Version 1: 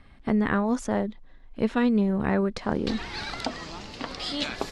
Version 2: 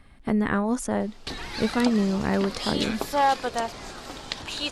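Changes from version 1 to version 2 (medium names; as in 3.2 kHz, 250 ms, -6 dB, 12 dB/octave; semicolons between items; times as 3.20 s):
background: entry -1.60 s; master: remove low-pass 6 kHz 12 dB/octave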